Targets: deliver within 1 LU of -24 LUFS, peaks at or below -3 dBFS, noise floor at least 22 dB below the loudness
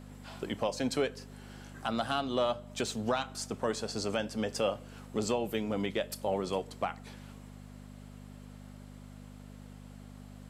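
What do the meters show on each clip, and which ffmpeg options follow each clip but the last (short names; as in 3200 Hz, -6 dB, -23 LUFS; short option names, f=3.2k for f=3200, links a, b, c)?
hum 50 Hz; harmonics up to 250 Hz; hum level -46 dBFS; loudness -34.0 LUFS; peak -18.0 dBFS; loudness target -24.0 LUFS
-> -af "bandreject=f=50:t=h:w=4,bandreject=f=100:t=h:w=4,bandreject=f=150:t=h:w=4,bandreject=f=200:t=h:w=4,bandreject=f=250:t=h:w=4"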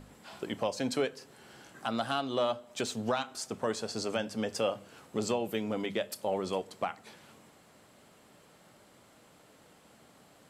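hum none; loudness -34.0 LUFS; peak -18.0 dBFS; loudness target -24.0 LUFS
-> -af "volume=10dB"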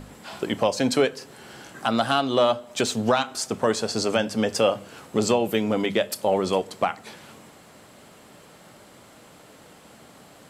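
loudness -24.0 LUFS; peak -8.0 dBFS; noise floor -50 dBFS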